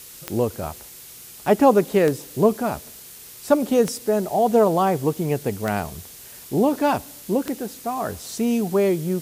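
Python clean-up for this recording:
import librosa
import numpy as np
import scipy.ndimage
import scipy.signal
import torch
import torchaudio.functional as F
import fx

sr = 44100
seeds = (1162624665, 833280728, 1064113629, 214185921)

y = fx.fix_declick_ar(x, sr, threshold=10.0)
y = fx.noise_reduce(y, sr, print_start_s=2.92, print_end_s=3.42, reduce_db=24.0)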